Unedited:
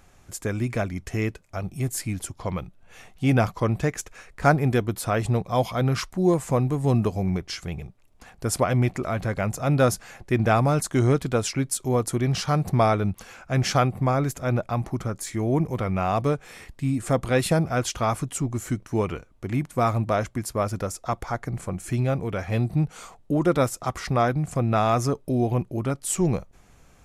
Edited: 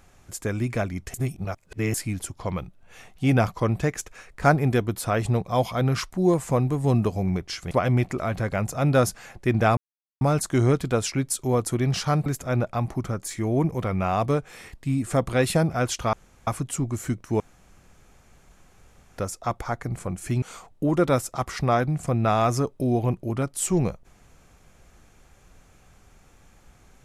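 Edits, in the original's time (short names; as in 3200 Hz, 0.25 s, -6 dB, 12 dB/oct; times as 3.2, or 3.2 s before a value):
1.14–1.94 reverse
7.71–8.56 cut
10.62 insert silence 0.44 s
12.67–14.22 cut
18.09 insert room tone 0.34 s
19.02–20.8 room tone
22.04–22.9 cut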